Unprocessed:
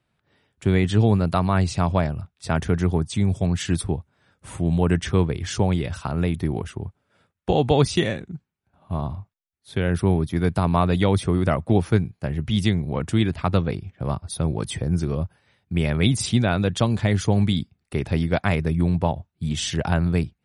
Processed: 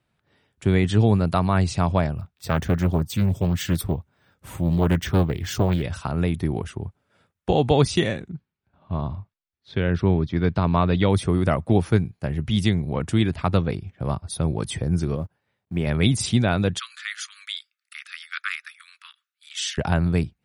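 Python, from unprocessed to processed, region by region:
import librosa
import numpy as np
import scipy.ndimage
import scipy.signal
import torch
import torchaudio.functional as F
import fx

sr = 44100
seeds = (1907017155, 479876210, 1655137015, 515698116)

y = fx.chain(x, sr, fx.resample_bad(factor=2, down='filtered', up='hold'),
    fx.doppler_dist(depth_ms=0.43), at=(2.17, 5.83))
y = fx.chain(y, sr, fx.lowpass(hz=5000.0, slope=24),
    fx.peak_eq(hz=760.0, db=-4.0, octaves=0.25), at=(8.3, 11.1))
y = fx.chain(y, sr, fx.law_mismatch(coded='A'),
    fx.highpass(hz=120.0, slope=6),
    fx.high_shelf(hz=2400.0, db=-10.5), at=(15.16, 15.87))
y = fx.chain(y, sr, fx.steep_highpass(hz=1200.0, slope=96),
    fx.peak_eq(hz=8500.0, db=-2.5, octaves=0.41), at=(16.79, 19.78))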